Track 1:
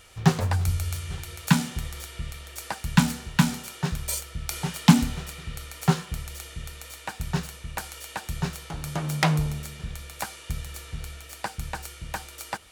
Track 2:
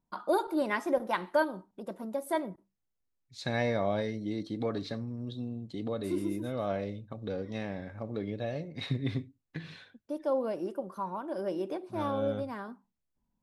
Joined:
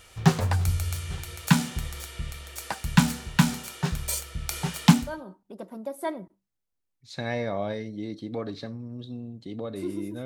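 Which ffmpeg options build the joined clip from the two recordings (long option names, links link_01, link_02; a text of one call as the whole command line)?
ffmpeg -i cue0.wav -i cue1.wav -filter_complex "[0:a]apad=whole_dur=10.25,atrim=end=10.25,atrim=end=5.29,asetpts=PTS-STARTPTS[link_01];[1:a]atrim=start=1.15:end=6.53,asetpts=PTS-STARTPTS[link_02];[link_01][link_02]acrossfade=duration=0.42:curve1=qua:curve2=qua" out.wav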